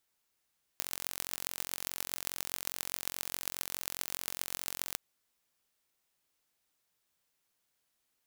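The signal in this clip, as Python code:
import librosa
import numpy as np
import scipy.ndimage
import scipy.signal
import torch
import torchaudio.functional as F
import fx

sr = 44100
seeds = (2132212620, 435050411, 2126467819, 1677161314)

y = fx.impulse_train(sr, length_s=4.16, per_s=44.8, accent_every=6, level_db=-5.5)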